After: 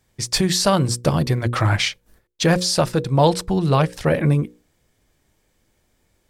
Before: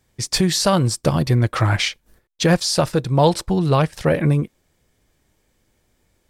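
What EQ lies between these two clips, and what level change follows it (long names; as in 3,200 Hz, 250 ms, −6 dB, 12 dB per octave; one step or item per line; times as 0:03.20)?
mains-hum notches 60/120/180/240/300/360/420/480/540 Hz
0.0 dB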